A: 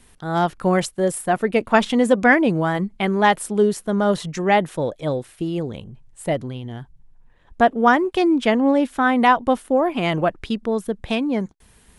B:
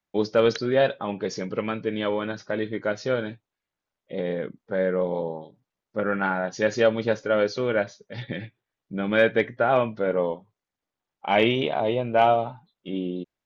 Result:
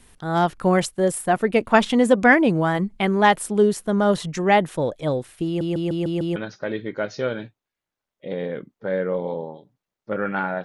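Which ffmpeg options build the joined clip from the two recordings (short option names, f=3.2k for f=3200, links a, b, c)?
-filter_complex "[0:a]apad=whole_dur=10.64,atrim=end=10.64,asplit=6[a][b][c][d][e][f];[a]atrim=end=5.612[g];[b]atrim=start=5.458:end=5.612[h];[c]atrim=start=5.458:end=5.612[i];[d]atrim=start=5.458:end=5.612[j];[e]atrim=start=5.458:end=5.612[k];[f]atrim=start=5.458:end=5.612[l];[1:a]atrim=start=2.228:end=6.51[m];[g][h]acrossfade=d=0.004:c1=hsin:c2=hsin[n];[n][i]acrossfade=d=0.004:c1=hsin:c2=hsin[o];[o][j]acrossfade=d=0.004:c1=hsin:c2=hsin[p];[p][k]acrossfade=d=0.004:c1=hsin:c2=hsin[q];[q][l]acrossfade=d=0.004:c1=hsin:c2=hsin[r];[r][m]acrossfade=d=0.004:c1=hsin:c2=hsin"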